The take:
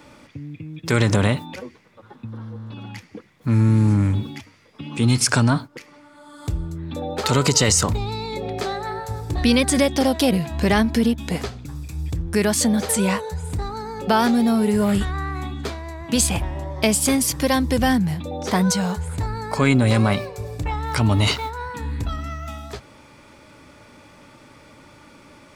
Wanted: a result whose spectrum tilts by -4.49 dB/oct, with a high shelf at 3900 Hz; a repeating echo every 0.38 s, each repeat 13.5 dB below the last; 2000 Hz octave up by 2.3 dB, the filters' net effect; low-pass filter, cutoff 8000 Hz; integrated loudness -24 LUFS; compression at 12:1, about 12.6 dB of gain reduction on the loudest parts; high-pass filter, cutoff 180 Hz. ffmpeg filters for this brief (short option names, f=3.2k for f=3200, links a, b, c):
-af "highpass=180,lowpass=8k,equalizer=f=2k:t=o:g=4,highshelf=f=3.9k:g=-4.5,acompressor=threshold=-26dB:ratio=12,aecho=1:1:380|760:0.211|0.0444,volume=7.5dB"